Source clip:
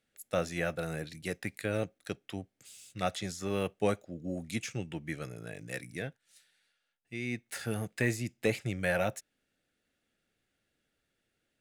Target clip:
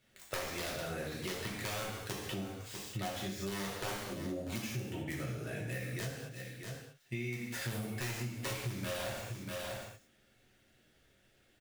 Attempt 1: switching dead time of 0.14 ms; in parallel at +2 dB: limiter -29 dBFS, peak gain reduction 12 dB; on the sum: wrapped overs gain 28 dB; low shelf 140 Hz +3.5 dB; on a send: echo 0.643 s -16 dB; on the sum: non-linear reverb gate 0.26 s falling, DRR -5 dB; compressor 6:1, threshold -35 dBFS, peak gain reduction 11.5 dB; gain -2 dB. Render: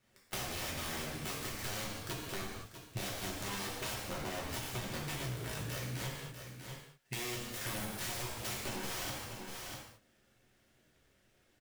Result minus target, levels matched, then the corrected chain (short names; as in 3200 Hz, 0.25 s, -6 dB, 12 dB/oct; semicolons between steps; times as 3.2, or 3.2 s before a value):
wrapped overs: distortion +17 dB; switching dead time: distortion +7 dB
switching dead time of 0.047 ms; in parallel at +2 dB: limiter -29 dBFS, peak gain reduction 11.5 dB; on the sum: wrapped overs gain 19.5 dB; low shelf 140 Hz +3.5 dB; on a send: echo 0.643 s -16 dB; on the sum: non-linear reverb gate 0.26 s falling, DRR -5 dB; compressor 6:1, threshold -35 dBFS, peak gain reduction 18.5 dB; gain -2 dB